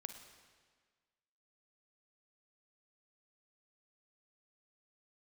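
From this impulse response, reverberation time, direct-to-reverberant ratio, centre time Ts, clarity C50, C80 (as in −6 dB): 1.6 s, 6.5 dB, 27 ms, 7.5 dB, 9.0 dB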